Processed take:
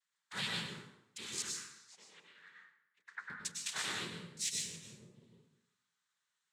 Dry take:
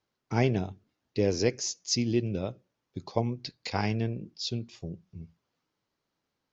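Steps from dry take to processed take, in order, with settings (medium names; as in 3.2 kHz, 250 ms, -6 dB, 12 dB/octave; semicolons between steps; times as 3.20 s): elliptic band-stop 200–950 Hz; peaking EQ 6.3 kHz -14 dB 2.4 oct; hum notches 50/100/150/200 Hz; noise-vocoded speech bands 6; differentiator; saturation -35 dBFS, distortion -19 dB; 1.42–3.30 s: auto-wah 290–1900 Hz, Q 3.6, down, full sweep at -34.5 dBFS; plate-style reverb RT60 0.85 s, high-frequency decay 0.7×, pre-delay 90 ms, DRR -1 dB; trim +12.5 dB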